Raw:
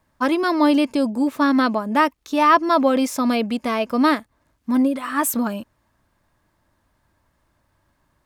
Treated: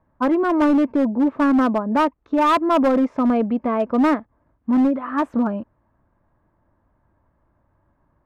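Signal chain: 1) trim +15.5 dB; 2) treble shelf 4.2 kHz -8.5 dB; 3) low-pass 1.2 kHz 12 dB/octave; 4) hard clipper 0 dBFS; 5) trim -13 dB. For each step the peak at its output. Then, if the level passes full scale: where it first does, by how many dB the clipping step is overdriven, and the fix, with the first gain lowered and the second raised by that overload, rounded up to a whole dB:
+11.5 dBFS, +11.0 dBFS, +9.0 dBFS, 0.0 dBFS, -13.0 dBFS; step 1, 9.0 dB; step 1 +6.5 dB, step 5 -4 dB

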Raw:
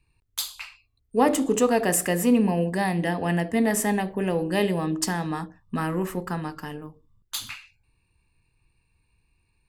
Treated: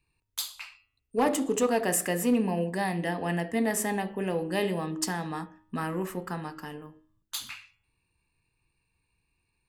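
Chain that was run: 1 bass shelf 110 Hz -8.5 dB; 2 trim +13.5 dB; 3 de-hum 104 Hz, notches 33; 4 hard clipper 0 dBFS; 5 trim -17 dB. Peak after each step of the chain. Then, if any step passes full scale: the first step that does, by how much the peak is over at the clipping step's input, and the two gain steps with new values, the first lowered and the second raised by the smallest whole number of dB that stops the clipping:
-8.0 dBFS, +5.5 dBFS, +5.0 dBFS, 0.0 dBFS, -17.0 dBFS; step 2, 5.0 dB; step 2 +8.5 dB, step 5 -12 dB

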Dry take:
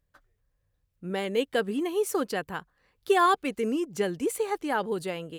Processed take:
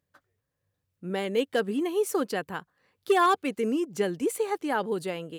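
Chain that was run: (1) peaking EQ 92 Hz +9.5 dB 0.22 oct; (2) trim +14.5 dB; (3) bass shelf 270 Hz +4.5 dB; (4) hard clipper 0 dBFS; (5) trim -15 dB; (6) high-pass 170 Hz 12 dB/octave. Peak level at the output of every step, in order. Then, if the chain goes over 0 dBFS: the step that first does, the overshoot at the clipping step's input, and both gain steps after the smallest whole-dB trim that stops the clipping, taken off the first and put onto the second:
-12.0 dBFS, +2.5 dBFS, +4.0 dBFS, 0.0 dBFS, -15.0 dBFS, -12.0 dBFS; step 2, 4.0 dB; step 2 +10.5 dB, step 5 -11 dB

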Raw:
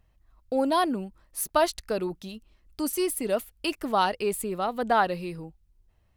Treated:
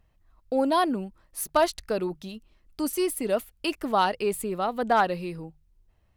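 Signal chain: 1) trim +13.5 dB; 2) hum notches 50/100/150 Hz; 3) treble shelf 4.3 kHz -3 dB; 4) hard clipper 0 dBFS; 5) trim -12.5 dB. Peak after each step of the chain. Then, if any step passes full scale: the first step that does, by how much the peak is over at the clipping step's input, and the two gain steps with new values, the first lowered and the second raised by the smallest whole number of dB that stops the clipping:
+3.5 dBFS, +3.5 dBFS, +3.5 dBFS, 0.0 dBFS, -12.5 dBFS; step 1, 3.5 dB; step 1 +9.5 dB, step 5 -8.5 dB

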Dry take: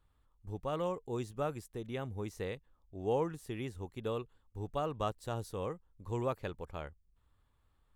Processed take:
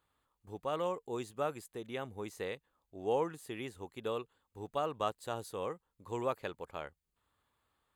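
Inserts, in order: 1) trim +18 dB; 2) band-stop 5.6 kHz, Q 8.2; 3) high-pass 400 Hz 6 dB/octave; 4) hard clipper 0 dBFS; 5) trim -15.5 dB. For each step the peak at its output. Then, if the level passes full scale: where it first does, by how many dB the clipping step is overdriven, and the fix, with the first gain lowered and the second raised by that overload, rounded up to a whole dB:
-3.5 dBFS, -3.5 dBFS, -4.5 dBFS, -4.5 dBFS, -20.0 dBFS; nothing clips

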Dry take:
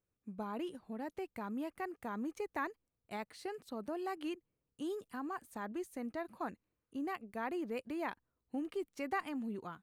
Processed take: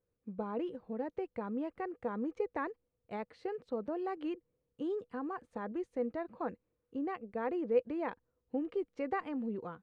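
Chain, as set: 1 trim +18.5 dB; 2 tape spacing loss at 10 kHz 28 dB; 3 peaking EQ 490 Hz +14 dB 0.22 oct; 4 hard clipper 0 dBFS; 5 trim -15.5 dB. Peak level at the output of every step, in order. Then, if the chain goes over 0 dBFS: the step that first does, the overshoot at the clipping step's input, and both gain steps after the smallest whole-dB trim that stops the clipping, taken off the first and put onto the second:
-6.5 dBFS, -10.0 dBFS, -3.5 dBFS, -3.5 dBFS, -19.0 dBFS; nothing clips

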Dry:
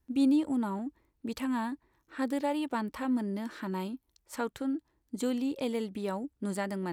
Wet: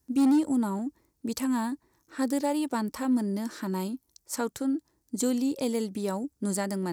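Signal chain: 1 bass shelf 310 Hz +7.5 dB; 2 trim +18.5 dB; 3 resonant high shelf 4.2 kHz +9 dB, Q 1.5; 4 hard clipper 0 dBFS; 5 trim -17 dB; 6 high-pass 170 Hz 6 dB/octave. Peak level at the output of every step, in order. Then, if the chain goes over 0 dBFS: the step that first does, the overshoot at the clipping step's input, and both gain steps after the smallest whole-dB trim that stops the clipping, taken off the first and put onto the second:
-14.0 dBFS, +4.5 dBFS, +5.0 dBFS, 0.0 dBFS, -17.0 dBFS, -15.0 dBFS; step 2, 5.0 dB; step 2 +13.5 dB, step 5 -12 dB

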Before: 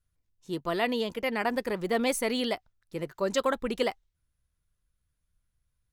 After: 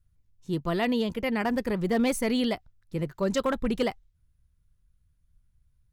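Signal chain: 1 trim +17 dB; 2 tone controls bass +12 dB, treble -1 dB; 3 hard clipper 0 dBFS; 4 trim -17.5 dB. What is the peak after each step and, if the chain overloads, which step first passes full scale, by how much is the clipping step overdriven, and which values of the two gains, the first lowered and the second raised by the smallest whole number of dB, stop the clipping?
+3.5 dBFS, +5.0 dBFS, 0.0 dBFS, -17.5 dBFS; step 1, 5.0 dB; step 1 +12 dB, step 4 -12.5 dB

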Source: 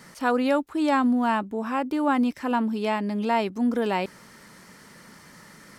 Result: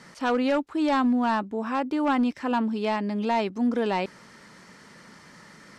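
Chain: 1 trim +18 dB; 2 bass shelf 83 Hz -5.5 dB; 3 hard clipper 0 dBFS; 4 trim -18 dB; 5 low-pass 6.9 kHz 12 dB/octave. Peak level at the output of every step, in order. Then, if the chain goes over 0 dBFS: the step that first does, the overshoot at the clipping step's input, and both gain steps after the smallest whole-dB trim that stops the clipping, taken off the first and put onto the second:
+6.0 dBFS, +6.5 dBFS, 0.0 dBFS, -18.0 dBFS, -17.5 dBFS; step 1, 6.5 dB; step 1 +11 dB, step 4 -11 dB

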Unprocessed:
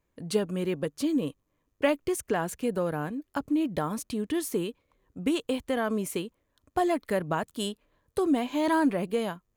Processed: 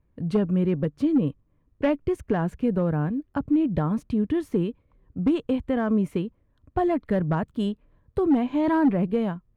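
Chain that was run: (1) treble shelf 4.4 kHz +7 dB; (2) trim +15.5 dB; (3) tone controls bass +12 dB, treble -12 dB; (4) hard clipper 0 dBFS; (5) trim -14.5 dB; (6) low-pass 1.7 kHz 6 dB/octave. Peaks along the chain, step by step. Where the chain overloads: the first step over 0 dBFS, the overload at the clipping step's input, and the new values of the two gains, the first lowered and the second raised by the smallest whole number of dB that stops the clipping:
-10.5 dBFS, +5.0 dBFS, +6.0 dBFS, 0.0 dBFS, -14.5 dBFS, -14.5 dBFS; step 2, 6.0 dB; step 2 +9.5 dB, step 5 -8.5 dB

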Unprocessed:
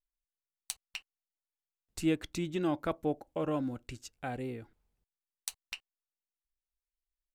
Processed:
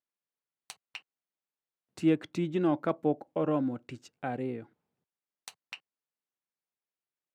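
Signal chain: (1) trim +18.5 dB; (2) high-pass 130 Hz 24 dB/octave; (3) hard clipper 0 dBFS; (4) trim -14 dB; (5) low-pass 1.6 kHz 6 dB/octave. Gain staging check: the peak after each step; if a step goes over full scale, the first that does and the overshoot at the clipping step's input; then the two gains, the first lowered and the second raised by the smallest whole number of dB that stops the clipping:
+4.0 dBFS, +4.0 dBFS, 0.0 dBFS, -14.0 dBFS, -15.0 dBFS; step 1, 4.0 dB; step 1 +14.5 dB, step 4 -10 dB

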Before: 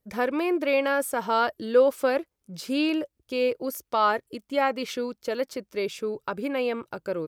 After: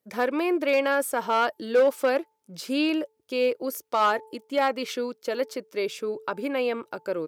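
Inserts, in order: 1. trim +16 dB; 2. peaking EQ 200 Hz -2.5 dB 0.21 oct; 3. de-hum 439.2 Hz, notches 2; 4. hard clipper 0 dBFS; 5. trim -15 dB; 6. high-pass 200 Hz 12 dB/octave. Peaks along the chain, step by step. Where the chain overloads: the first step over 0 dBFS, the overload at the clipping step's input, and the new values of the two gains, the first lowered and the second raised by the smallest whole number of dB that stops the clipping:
+6.0 dBFS, +5.5 dBFS, +6.0 dBFS, 0.0 dBFS, -15.0 dBFS, -11.0 dBFS; step 1, 6.0 dB; step 1 +10 dB, step 5 -9 dB

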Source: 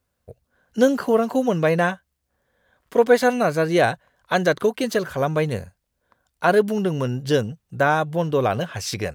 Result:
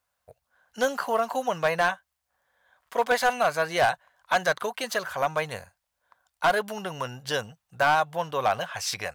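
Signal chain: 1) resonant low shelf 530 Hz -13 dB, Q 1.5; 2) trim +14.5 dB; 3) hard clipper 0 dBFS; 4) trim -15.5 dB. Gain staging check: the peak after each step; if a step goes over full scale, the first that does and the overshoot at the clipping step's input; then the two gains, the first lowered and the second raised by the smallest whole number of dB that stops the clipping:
-5.0 dBFS, +9.5 dBFS, 0.0 dBFS, -15.5 dBFS; step 2, 9.5 dB; step 2 +4.5 dB, step 4 -5.5 dB

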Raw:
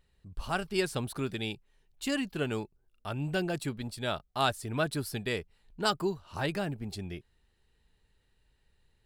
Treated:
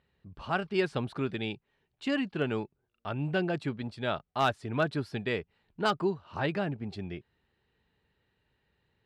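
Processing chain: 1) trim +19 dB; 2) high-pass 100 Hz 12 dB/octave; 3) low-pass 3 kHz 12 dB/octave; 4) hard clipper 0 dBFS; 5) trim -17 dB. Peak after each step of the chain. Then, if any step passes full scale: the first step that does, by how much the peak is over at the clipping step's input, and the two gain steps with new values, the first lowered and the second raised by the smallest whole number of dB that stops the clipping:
+6.0 dBFS, +6.5 dBFS, +4.5 dBFS, 0.0 dBFS, -17.0 dBFS; step 1, 4.5 dB; step 1 +14 dB, step 5 -12 dB

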